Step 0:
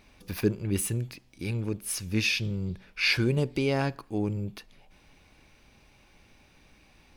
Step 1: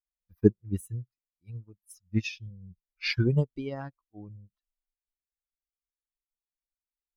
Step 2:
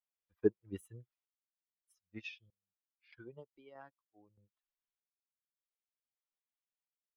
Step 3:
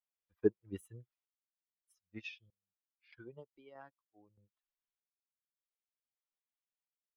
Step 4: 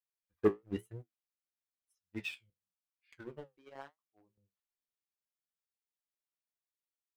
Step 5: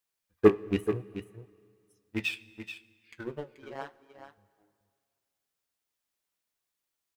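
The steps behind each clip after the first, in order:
spectral dynamics exaggerated over time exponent 2; low-shelf EQ 200 Hz +6.5 dB; expander for the loud parts 2.5 to 1, over −44 dBFS; level +6.5 dB
parametric band 3,300 Hz +5.5 dB 0.29 octaves; sample-and-hold tremolo 1.6 Hz, depth 100%; three-way crossover with the lows and the highs turned down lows −19 dB, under 370 Hz, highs −16 dB, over 3,400 Hz; level +1 dB
no processing that can be heard
leveller curve on the samples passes 2; flanger 0.98 Hz, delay 9.6 ms, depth 9.5 ms, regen −51%; level +2.5 dB
loose part that buzzes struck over −40 dBFS, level −35 dBFS; on a send: single-tap delay 432 ms −10.5 dB; on the sum: dense smooth reverb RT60 2.3 s, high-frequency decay 0.85×, DRR 19.5 dB; level +9 dB

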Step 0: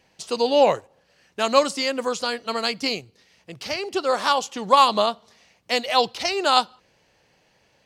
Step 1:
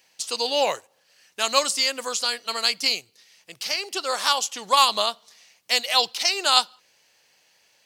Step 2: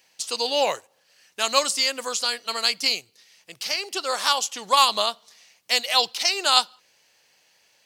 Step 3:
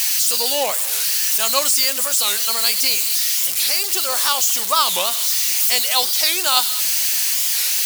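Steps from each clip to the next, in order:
spectral tilt +4 dB per octave; level −3.5 dB
no processing that can be heard
spike at every zero crossing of −12 dBFS; wow of a warped record 45 rpm, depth 250 cents

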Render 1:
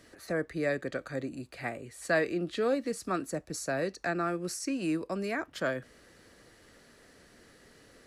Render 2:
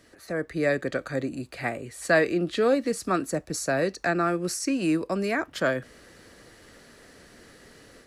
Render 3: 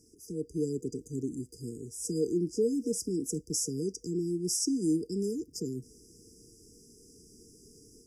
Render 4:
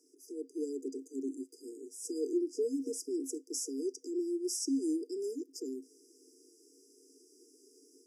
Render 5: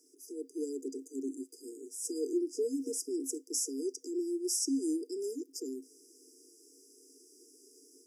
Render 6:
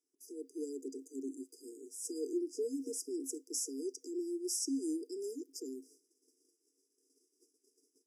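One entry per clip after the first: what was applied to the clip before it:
automatic gain control gain up to 6.5 dB
brick-wall band-stop 480–4,800 Hz; parametric band 6,200 Hz +5.5 dB 2.7 octaves; level −3.5 dB
Chebyshev high-pass with heavy ripple 260 Hz, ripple 6 dB
high-shelf EQ 6,300 Hz +7.5 dB
noise gate −57 dBFS, range −19 dB; level −4 dB

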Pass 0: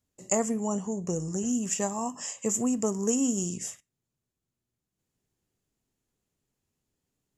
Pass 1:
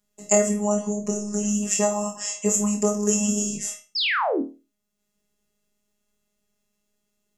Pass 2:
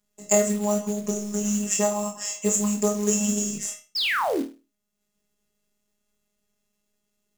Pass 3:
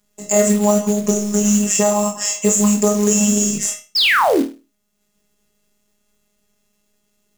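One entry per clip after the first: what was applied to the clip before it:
phases set to zero 207 Hz; sound drawn into the spectrogram fall, 0:03.95–0:04.42, 240–5,500 Hz −32 dBFS; flutter between parallel walls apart 4.4 metres, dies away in 0.31 s; level +7.5 dB
floating-point word with a short mantissa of 2 bits; level −1 dB
boost into a limiter +11 dB; level −1 dB

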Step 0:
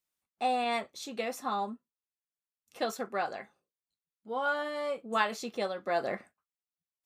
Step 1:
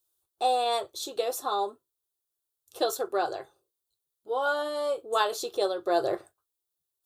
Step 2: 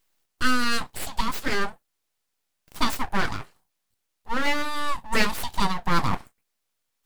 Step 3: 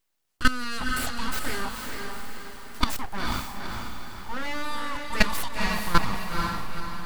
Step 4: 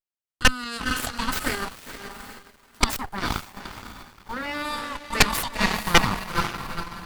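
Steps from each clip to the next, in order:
drawn EQ curve 130 Hz 0 dB, 220 Hz −26 dB, 350 Hz +5 dB, 520 Hz −2 dB, 1,500 Hz −6 dB, 2,100 Hz −19 dB, 3,600 Hz +1 dB, 5,400 Hz −3 dB, 11,000 Hz +5 dB; level +7.5 dB
full-wave rectification; level +6.5 dB
output level in coarse steps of 16 dB; feedback delay with all-pass diffusion 474 ms, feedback 50%, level −3.5 dB; level +4 dB
harmonic generator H 3 −11 dB, 7 −45 dB, 8 −8 dB, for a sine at −1 dBFS

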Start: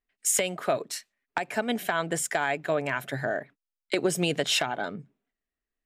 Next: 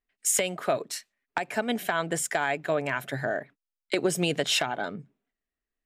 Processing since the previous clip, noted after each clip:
no processing that can be heard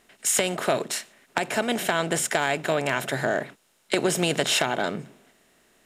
compressor on every frequency bin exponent 0.6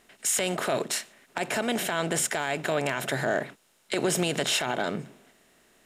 brickwall limiter −15.5 dBFS, peak gain reduction 9.5 dB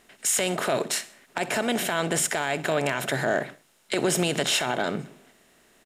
repeating echo 63 ms, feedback 43%, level −19 dB
level +2 dB

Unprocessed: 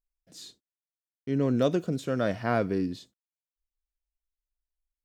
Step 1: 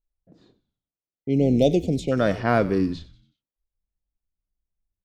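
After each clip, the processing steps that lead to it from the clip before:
low-pass that shuts in the quiet parts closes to 620 Hz, open at −24 dBFS
time-frequency box erased 0:01.05–0:02.12, 890–2,000 Hz
echo with shifted repeats 93 ms, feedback 46%, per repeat −100 Hz, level −17 dB
level +6 dB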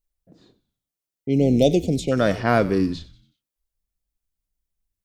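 high-shelf EQ 4,600 Hz +7 dB
level +1.5 dB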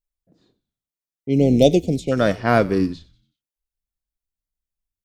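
expander for the loud parts 1.5 to 1, over −35 dBFS
level +4 dB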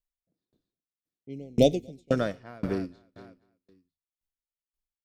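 repeating echo 238 ms, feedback 47%, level −17 dB
tremolo with a ramp in dB decaying 1.9 Hz, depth 34 dB
level −2 dB

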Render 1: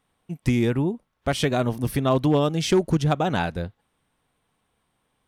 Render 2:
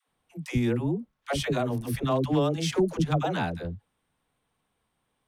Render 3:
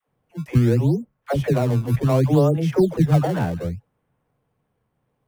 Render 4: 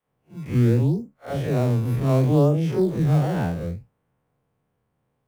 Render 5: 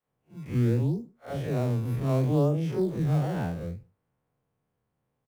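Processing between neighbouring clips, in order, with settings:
all-pass dispersion lows, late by 90 ms, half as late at 440 Hz; level −4.5 dB
octave-band graphic EQ 125/500/4,000/8,000 Hz +10/+6/−11/−10 dB; in parallel at −10 dB: sample-and-hold swept by an LFO 20×, swing 160% 0.67 Hz
spectrum smeared in time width 99 ms
slap from a distant wall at 26 metres, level −30 dB; level −6 dB

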